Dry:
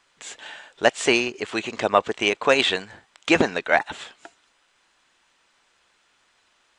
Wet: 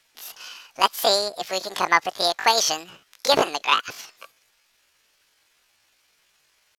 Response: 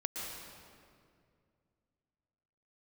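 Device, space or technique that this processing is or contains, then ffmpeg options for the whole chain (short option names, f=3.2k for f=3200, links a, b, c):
chipmunk voice: -af "asetrate=74167,aresample=44100,atempo=0.594604"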